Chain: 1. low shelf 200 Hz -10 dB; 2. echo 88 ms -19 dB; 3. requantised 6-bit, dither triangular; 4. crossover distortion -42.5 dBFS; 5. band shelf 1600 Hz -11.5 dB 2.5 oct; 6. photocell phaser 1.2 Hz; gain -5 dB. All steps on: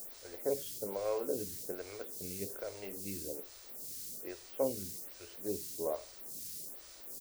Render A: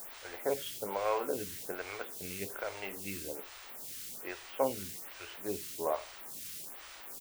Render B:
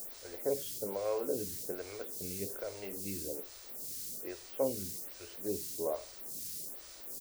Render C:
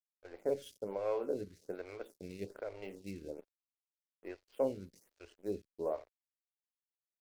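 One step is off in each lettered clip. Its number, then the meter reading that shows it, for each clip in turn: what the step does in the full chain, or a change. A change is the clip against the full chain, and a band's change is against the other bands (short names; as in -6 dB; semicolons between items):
5, momentary loudness spread change +1 LU; 4, distortion -20 dB; 3, distortion -5 dB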